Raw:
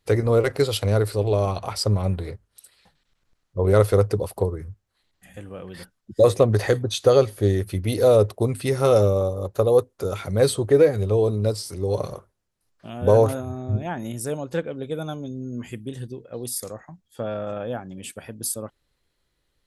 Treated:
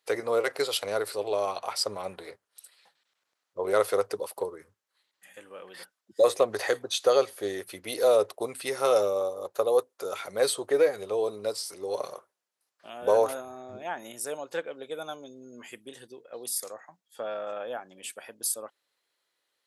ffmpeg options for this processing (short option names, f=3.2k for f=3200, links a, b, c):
-filter_complex "[0:a]asettb=1/sr,asplit=3[a][b][c];[a]atrim=end=4.154[d];[b]atrim=start=4.15:end=5.63,asetpts=PTS-STARTPTS,afade=t=in:d=0.004:c=qsin,afade=t=out:st=1.476:d=0.004:c=qsin,bandreject=f=710:w=5.5[e];[c]atrim=start=5.626[f];[d][e]acrossfade=d=0.004:c1=hsin:c2=qsin[g];[g][f]acrossfade=d=0.004:c1=qsin:c2=hsin,highpass=570,volume=-1.5dB"